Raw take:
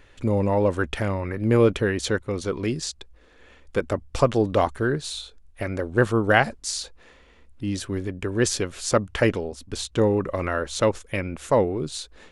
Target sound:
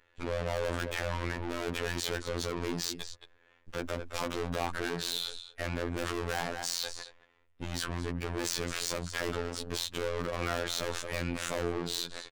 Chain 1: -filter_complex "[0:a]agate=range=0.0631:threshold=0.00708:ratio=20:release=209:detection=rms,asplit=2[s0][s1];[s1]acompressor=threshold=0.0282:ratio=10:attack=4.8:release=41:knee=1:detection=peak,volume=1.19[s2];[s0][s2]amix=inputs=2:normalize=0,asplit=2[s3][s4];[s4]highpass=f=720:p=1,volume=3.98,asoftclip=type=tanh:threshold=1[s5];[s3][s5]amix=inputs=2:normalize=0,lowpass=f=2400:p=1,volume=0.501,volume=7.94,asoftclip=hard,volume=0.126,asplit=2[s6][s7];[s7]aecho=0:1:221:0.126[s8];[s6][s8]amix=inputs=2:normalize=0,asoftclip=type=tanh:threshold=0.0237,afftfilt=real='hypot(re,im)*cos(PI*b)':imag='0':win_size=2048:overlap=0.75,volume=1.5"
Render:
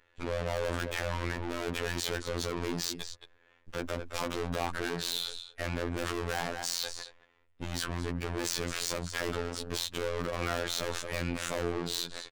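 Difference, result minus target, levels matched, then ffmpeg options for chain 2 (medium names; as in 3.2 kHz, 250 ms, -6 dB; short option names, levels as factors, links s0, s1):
compression: peak gain reduction -6 dB
-filter_complex "[0:a]agate=range=0.0631:threshold=0.00708:ratio=20:release=209:detection=rms,asplit=2[s0][s1];[s1]acompressor=threshold=0.0133:ratio=10:attack=4.8:release=41:knee=1:detection=peak,volume=1.19[s2];[s0][s2]amix=inputs=2:normalize=0,asplit=2[s3][s4];[s4]highpass=f=720:p=1,volume=3.98,asoftclip=type=tanh:threshold=1[s5];[s3][s5]amix=inputs=2:normalize=0,lowpass=f=2400:p=1,volume=0.501,volume=7.94,asoftclip=hard,volume=0.126,asplit=2[s6][s7];[s7]aecho=0:1:221:0.126[s8];[s6][s8]amix=inputs=2:normalize=0,asoftclip=type=tanh:threshold=0.0237,afftfilt=real='hypot(re,im)*cos(PI*b)':imag='0':win_size=2048:overlap=0.75,volume=1.5"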